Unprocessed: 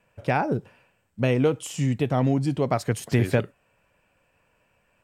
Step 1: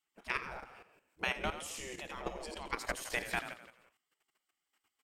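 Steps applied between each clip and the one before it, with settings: frequency-shifting echo 84 ms, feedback 53%, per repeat -39 Hz, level -8 dB; spectral gate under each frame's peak -15 dB weak; level held to a coarse grid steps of 11 dB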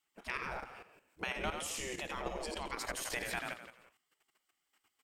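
peak limiter -29 dBFS, peak gain reduction 10.5 dB; trim +3.5 dB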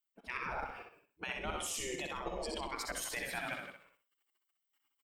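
expander on every frequency bin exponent 1.5; reverse; compression 5:1, threshold -51 dBFS, peak gain reduction 15.5 dB; reverse; feedback delay 63 ms, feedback 26%, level -5.5 dB; trim +12.5 dB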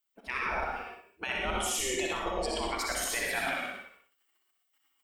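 peaking EQ 140 Hz -12.5 dB 0.61 oct; gated-style reverb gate 140 ms rising, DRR 1.5 dB; trim +5.5 dB

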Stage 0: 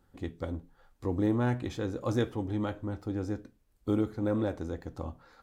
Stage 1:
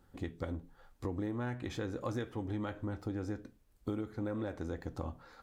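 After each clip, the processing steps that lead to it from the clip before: dynamic bell 1.8 kHz, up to +5 dB, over -51 dBFS, Q 1.2; compression 6:1, threshold -36 dBFS, peak gain reduction 13 dB; trim +1.5 dB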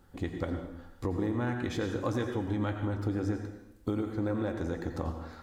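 plate-style reverb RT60 0.84 s, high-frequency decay 0.9×, pre-delay 75 ms, DRR 5.5 dB; trim +5 dB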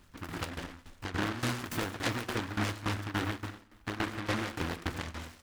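tremolo saw down 3.5 Hz, depth 85%; delay time shaken by noise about 1.2 kHz, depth 0.4 ms; trim +1.5 dB

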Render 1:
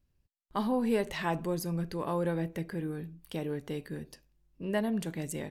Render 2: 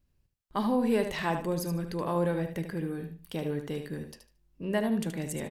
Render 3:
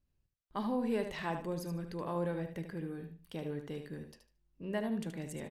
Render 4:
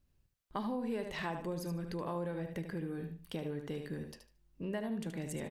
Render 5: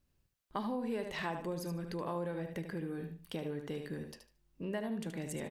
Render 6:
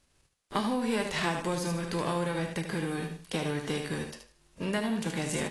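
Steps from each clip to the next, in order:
feedback delay 75 ms, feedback 21%, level -8 dB; trim +1.5 dB
treble shelf 8.1 kHz -7 dB; trim -7 dB
compression 3:1, threshold -42 dBFS, peak gain reduction 10 dB; trim +5.5 dB
bass shelf 130 Hz -5.5 dB; trim +1 dB
formants flattened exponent 0.6; trim +7 dB; AAC 32 kbps 24 kHz

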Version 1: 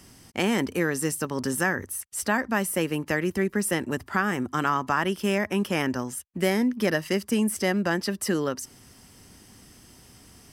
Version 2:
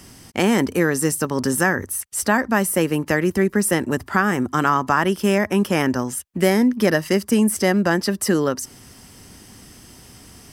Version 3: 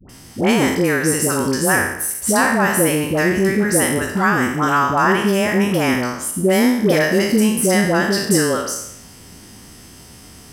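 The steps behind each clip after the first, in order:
dynamic bell 2.8 kHz, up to -4 dB, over -43 dBFS, Q 1.2; trim +7 dB
spectral sustain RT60 0.78 s; phase dispersion highs, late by 94 ms, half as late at 780 Hz; trim +1 dB

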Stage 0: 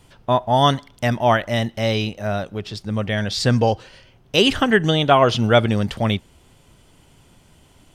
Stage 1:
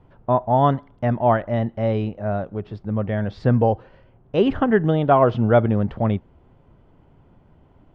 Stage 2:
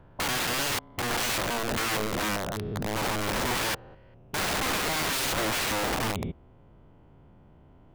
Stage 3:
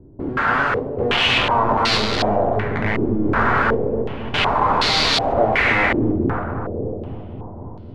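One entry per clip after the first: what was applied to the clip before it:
low-pass 1.1 kHz 12 dB/octave
spectrogram pixelated in time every 200 ms; integer overflow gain 23.5 dB
filtered feedback delay 273 ms, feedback 81%, low-pass 890 Hz, level -4 dB; two-slope reverb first 0.45 s, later 3.3 s, from -28 dB, DRR 3 dB; step-sequenced low-pass 2.7 Hz 330–4300 Hz; trim +5 dB

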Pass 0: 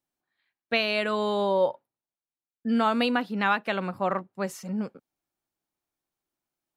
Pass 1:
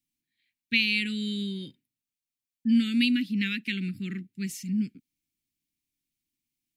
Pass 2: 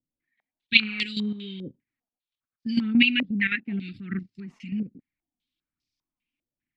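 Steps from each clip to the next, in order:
elliptic band-stop 280–2200 Hz, stop band 50 dB; trim +3.5 dB
phaser 1.2 Hz, delay 4.8 ms, feedback 47%; level held to a coarse grid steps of 10 dB; step-sequenced low-pass 5 Hz 550–4900 Hz; trim +3 dB

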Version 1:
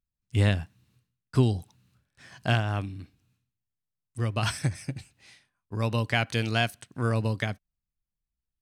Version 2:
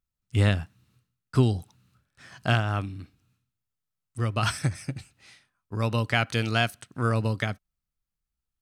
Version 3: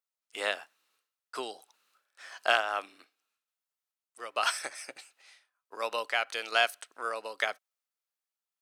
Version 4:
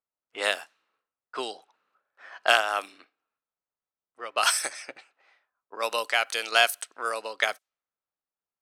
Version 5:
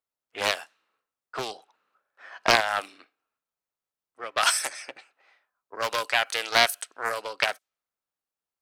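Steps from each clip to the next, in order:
peaking EQ 1.3 kHz +8 dB 0.2 oct; trim +1 dB
high-pass 500 Hz 24 dB/octave; random-step tremolo 2.3 Hz; trim +2 dB
level-controlled noise filter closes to 1.1 kHz, open at -29.5 dBFS; treble shelf 6.4 kHz +12 dB; trim +4 dB
loudspeaker Doppler distortion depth 0.4 ms; trim +1 dB

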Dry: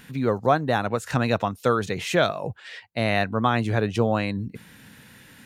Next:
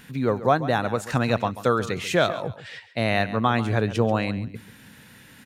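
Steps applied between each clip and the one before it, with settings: feedback delay 137 ms, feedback 23%, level -14.5 dB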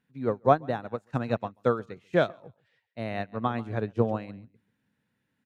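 high-pass 290 Hz 6 dB/octave; tilt EQ -3 dB/octave; upward expansion 2.5:1, over -33 dBFS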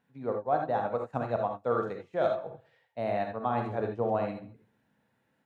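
peaking EQ 730 Hz +12 dB 1.4 oct; reverse; compression 5:1, threshold -26 dBFS, peak gain reduction 19.5 dB; reverse; gated-style reverb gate 100 ms rising, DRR 2.5 dB; trim -1.5 dB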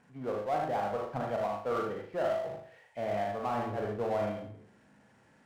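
knee-point frequency compression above 2 kHz 1.5:1; flutter echo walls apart 6.6 m, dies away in 0.34 s; power-law waveshaper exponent 0.7; trim -7 dB

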